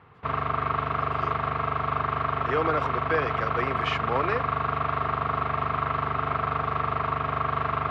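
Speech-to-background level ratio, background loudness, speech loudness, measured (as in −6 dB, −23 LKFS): −2.5 dB, −27.0 LKFS, −29.5 LKFS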